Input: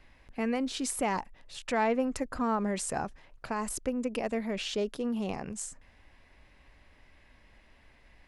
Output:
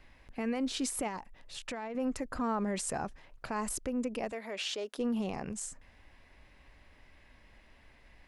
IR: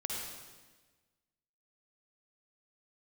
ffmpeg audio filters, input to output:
-filter_complex "[0:a]alimiter=level_in=1dB:limit=-24dB:level=0:latency=1:release=64,volume=-1dB,asettb=1/sr,asplit=3[link_01][link_02][link_03];[link_01]atrim=end=1.074[link_04];[link_02]atrim=start=1.07:end=1.95,asetpts=PTS-STARTPTS,afade=type=in:duration=0.004:curve=qsin,afade=type=out:start_time=0.876:duration=0.004:curve=qsin,acompressor=threshold=-37dB:ratio=5[link_05];[link_03]atrim=start=1.946[link_06];[link_04][link_05]acrossfade=duration=0.004:curve1=hsin:curve2=qsin[link_07];[link_07][link_06]acrossfade=duration=0.004:curve1=qsin:curve2=hsin,asettb=1/sr,asplit=3[link_08][link_09][link_10];[link_08]atrim=end=4.324[link_11];[link_09]atrim=start=4.32:end=4.98,asetpts=PTS-STARTPTS,afade=type=in:duration=0.004:curve=qsin,afade=type=out:start_time=0.656:duration=0.004:curve=qsin,highpass=470[link_12];[link_10]atrim=start=4.976[link_13];[link_11][link_12]acrossfade=duration=0.004:curve1=hsin:curve2=qsin[link_14];[link_14][link_13]acrossfade=duration=0.004:curve1=qsin:curve2=hsin"

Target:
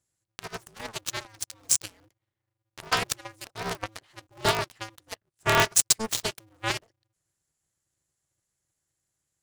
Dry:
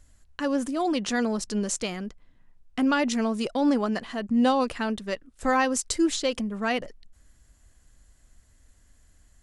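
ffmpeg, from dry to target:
ffmpeg -i in.wav -filter_complex "[0:a]bass=frequency=250:gain=-13,treble=frequency=4000:gain=7,aeval=exprs='0.422*(cos(1*acos(clip(val(0)/0.422,-1,1)))-cos(1*PI/2))+0.0422*(cos(4*acos(clip(val(0)/0.422,-1,1)))-cos(4*PI/2))+0.0266*(cos(6*acos(clip(val(0)/0.422,-1,1)))-cos(6*PI/2))+0.0668*(cos(7*acos(clip(val(0)/0.422,-1,1)))-cos(7*PI/2))':channel_layout=same,asplit=2[link_01][link_02];[link_02]aeval=exprs='sgn(val(0))*max(abs(val(0))-0.00944,0)':channel_layout=same,volume=-3dB[link_03];[link_01][link_03]amix=inputs=2:normalize=0,aeval=exprs='val(0)*sgn(sin(2*PI*110*n/s))':channel_layout=same" out.wav

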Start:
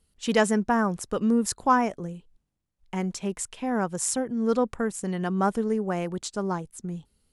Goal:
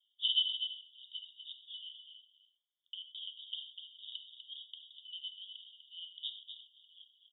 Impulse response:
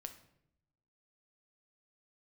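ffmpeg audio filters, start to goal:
-filter_complex "[0:a]asuperpass=centerf=3300:order=20:qfactor=4.2,aecho=1:1:247:0.398[link_01];[1:a]atrim=start_sample=2205,atrim=end_sample=3528,asetrate=25137,aresample=44100[link_02];[link_01][link_02]afir=irnorm=-1:irlink=0,volume=11.5dB"

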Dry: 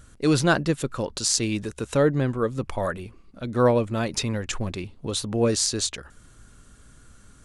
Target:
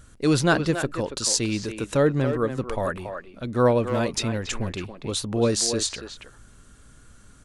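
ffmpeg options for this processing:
ffmpeg -i in.wav -filter_complex "[0:a]asplit=2[link_01][link_02];[link_02]adelay=280,highpass=300,lowpass=3400,asoftclip=type=hard:threshold=-14dB,volume=-7dB[link_03];[link_01][link_03]amix=inputs=2:normalize=0" out.wav

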